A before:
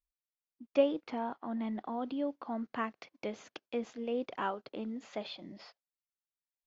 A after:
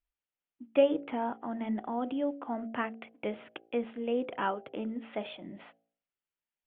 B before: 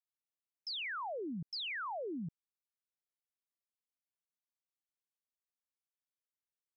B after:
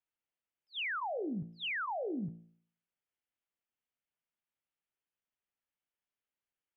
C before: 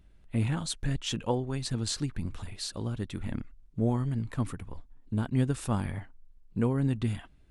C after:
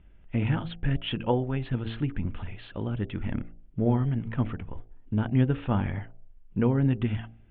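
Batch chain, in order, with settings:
Butterworth low-pass 3,300 Hz 72 dB per octave
notch filter 1,100 Hz, Q 13
hum removal 56.45 Hz, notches 14
level +4 dB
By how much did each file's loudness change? +3.5, +2.5, +3.0 LU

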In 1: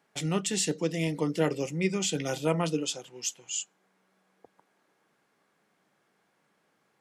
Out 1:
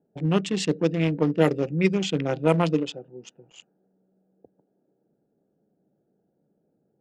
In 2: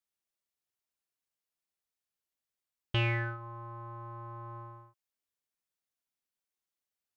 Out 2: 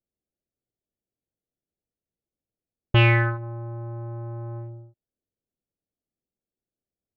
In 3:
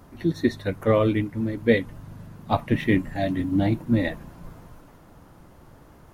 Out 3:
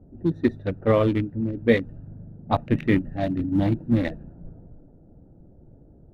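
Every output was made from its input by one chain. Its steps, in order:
adaptive Wiener filter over 41 samples
low-pass that shuts in the quiet parts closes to 660 Hz, open at −20.5 dBFS
loudness normalisation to −24 LKFS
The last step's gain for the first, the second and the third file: +7.0, +13.0, +1.0 decibels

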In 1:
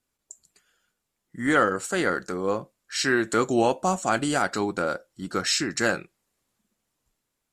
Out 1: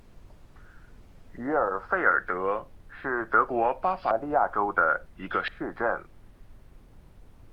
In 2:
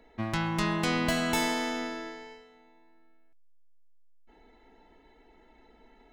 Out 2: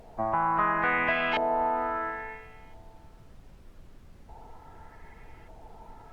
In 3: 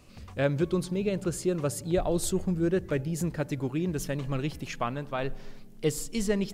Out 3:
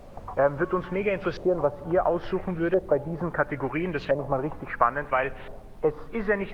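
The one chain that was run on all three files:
hearing-aid frequency compression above 2,100 Hz 1.5 to 1
three-way crossover with the lows and the highs turned down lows −15 dB, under 500 Hz, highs −16 dB, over 2,300 Hz
downward compressor 2 to 1, threshold −37 dBFS
auto-filter low-pass saw up 0.73 Hz 620–3,300 Hz
background noise brown −56 dBFS
Opus 48 kbit/s 48,000 Hz
loudness normalisation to −27 LKFS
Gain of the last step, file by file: +8.0, +8.0, +12.5 decibels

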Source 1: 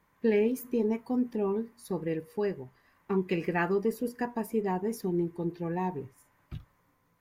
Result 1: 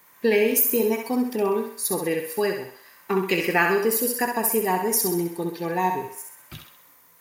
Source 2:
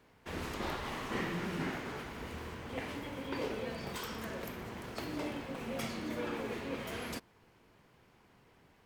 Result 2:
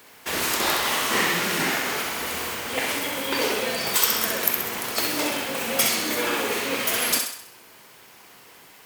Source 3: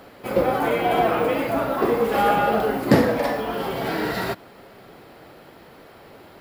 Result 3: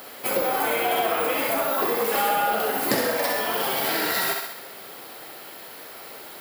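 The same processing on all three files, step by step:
RIAA equalisation recording
feedback echo with a high-pass in the loop 65 ms, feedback 51%, high-pass 390 Hz, level −5 dB
downward compressor 3 to 1, threshold −25 dBFS
loudness normalisation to −23 LKFS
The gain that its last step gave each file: +10.0, +13.5, +3.0 decibels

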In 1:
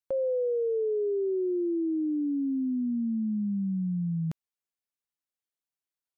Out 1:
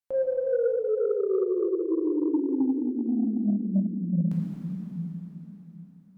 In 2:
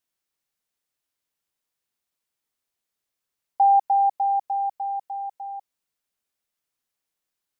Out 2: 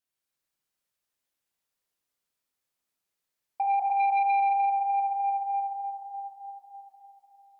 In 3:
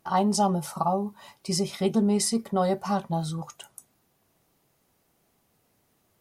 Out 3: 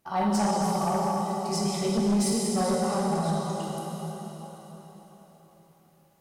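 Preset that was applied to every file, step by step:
dense smooth reverb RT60 4.5 s, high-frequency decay 0.85×, DRR −5.5 dB
sine wavefolder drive 5 dB, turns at −5.5 dBFS
loudness normalisation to −27 LKFS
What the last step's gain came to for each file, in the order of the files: −11.5, −16.0, −14.0 decibels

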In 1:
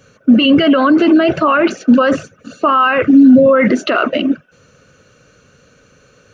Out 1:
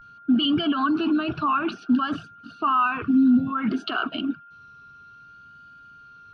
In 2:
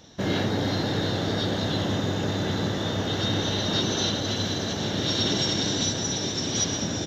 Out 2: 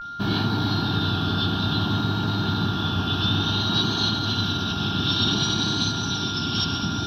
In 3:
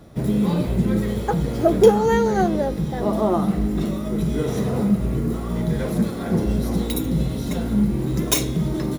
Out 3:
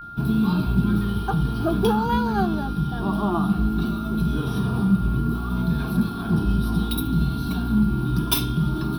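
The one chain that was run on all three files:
pitch vibrato 0.57 Hz 80 cents
phaser with its sweep stopped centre 2,000 Hz, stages 6
steady tone 1,400 Hz −37 dBFS
loudness normalisation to −23 LKFS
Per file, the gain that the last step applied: −8.5, +4.5, +1.5 decibels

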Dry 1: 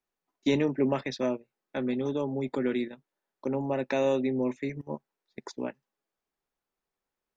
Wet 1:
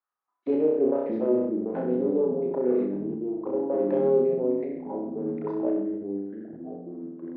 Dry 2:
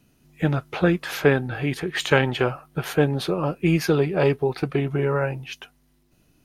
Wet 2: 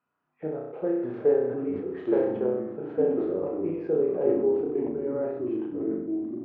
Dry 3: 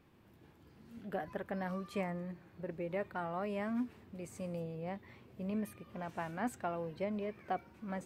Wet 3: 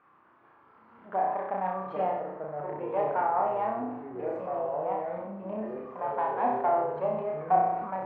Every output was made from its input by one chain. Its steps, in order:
phase distortion by the signal itself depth 0.17 ms
Bessel low-pass filter 2,100 Hz, order 2
envelope filter 450–1,200 Hz, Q 3.4, down, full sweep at −26 dBFS
flutter between parallel walls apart 5.5 metres, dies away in 0.69 s
delay with pitch and tempo change per echo 497 ms, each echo −4 semitones, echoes 2, each echo −6 dB
level that may fall only so fast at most 53 dB per second
normalise the peak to −12 dBFS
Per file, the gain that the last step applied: +5.5, −3.5, +15.0 decibels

